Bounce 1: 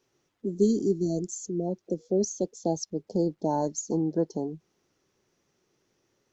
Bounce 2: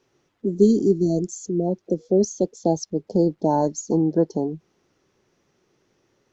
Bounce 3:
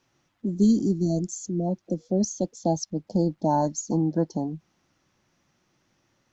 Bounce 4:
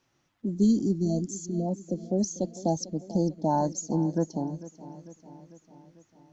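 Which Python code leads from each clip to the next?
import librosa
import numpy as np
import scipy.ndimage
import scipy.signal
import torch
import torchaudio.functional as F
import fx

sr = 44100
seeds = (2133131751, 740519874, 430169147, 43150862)

y1 = fx.lowpass(x, sr, hz=3900.0, slope=6)
y1 = F.gain(torch.from_numpy(y1), 7.0).numpy()
y2 = fx.peak_eq(y1, sr, hz=420.0, db=-14.5, octaves=0.5)
y3 = fx.echo_feedback(y2, sr, ms=447, feedback_pct=60, wet_db=-16.5)
y3 = F.gain(torch.from_numpy(y3), -2.5).numpy()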